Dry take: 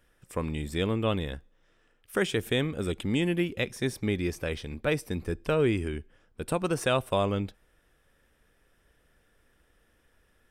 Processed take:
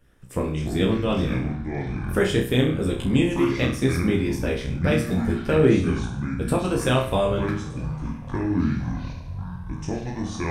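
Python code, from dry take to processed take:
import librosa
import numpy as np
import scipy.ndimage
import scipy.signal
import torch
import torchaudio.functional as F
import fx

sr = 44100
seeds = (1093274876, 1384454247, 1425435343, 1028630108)

y = fx.low_shelf(x, sr, hz=370.0, db=9.5)
y = fx.doubler(y, sr, ms=15.0, db=-2.5)
y = fx.room_flutter(y, sr, wall_m=5.5, rt60_s=0.5)
y = fx.hpss(y, sr, part='percussive', gain_db=8)
y = fx.echo_pitch(y, sr, ms=113, semitones=-7, count=3, db_per_echo=-6.0)
y = y * librosa.db_to_amplitude(-6.0)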